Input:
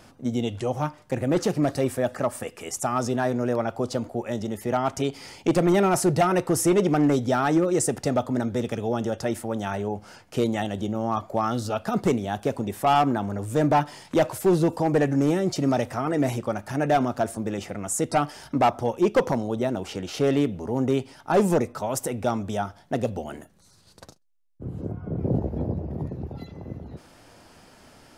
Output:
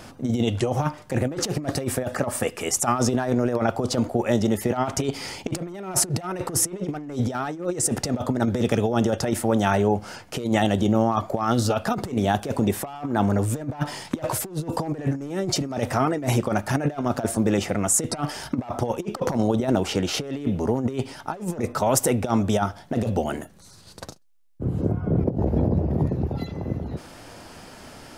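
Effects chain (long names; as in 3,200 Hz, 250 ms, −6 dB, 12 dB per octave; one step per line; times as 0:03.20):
compressor whose output falls as the input rises −27 dBFS, ratio −0.5
level +4.5 dB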